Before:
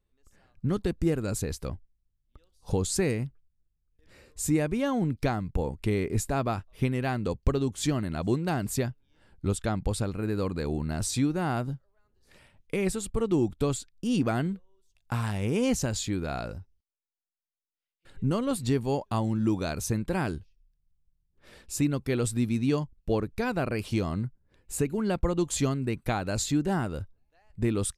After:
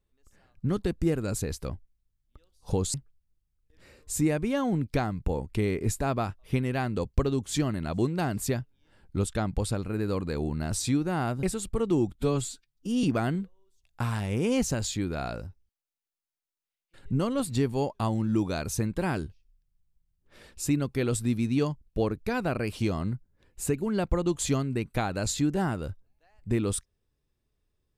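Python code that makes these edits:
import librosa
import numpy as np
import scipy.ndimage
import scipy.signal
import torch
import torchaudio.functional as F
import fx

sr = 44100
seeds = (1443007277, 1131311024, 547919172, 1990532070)

y = fx.edit(x, sr, fx.cut(start_s=2.94, length_s=0.29),
    fx.cut(start_s=11.72, length_s=1.12),
    fx.stretch_span(start_s=13.56, length_s=0.59, factor=1.5), tone=tone)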